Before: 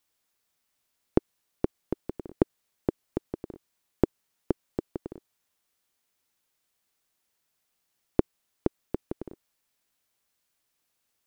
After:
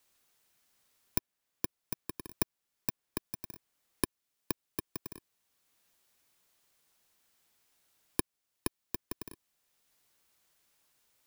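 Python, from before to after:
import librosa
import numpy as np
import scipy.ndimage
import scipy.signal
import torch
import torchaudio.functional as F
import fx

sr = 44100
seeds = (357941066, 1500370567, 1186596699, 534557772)

y = fx.bit_reversed(x, sr, seeds[0], block=64)
y = fx.band_squash(y, sr, depth_pct=40)
y = F.gain(torch.from_numpy(y), -7.0).numpy()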